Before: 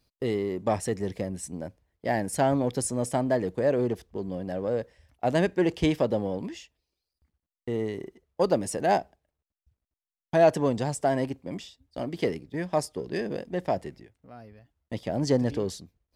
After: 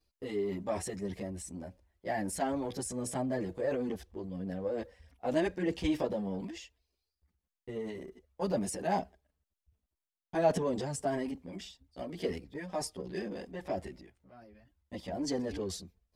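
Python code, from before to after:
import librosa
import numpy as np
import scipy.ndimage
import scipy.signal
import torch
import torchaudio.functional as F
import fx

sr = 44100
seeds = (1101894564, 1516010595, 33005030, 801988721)

y = fx.chorus_voices(x, sr, voices=6, hz=0.41, base_ms=13, depth_ms=3.0, mix_pct=65)
y = fx.transient(y, sr, attack_db=1, sustain_db=7)
y = y * 10.0 ** (-6.0 / 20.0)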